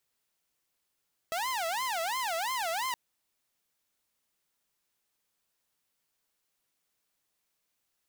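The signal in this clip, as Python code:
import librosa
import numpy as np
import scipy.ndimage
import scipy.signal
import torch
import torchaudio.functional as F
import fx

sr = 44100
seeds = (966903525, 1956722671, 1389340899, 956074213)

y = fx.siren(sr, length_s=1.62, kind='wail', low_hz=652.0, high_hz=1050.0, per_s=2.9, wave='saw', level_db=-27.5)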